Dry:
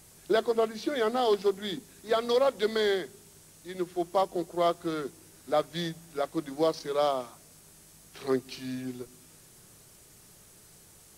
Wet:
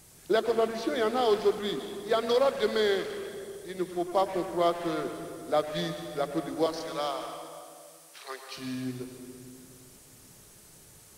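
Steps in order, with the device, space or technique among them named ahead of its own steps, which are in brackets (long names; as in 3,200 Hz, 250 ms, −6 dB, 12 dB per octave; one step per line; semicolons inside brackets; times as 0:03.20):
0:06.66–0:08.57: Bessel high-pass filter 920 Hz, order 4
saturated reverb return (on a send at −3.5 dB: convolution reverb RT60 2.0 s, pre-delay 97 ms + soft clipping −30 dBFS, distortion −8 dB)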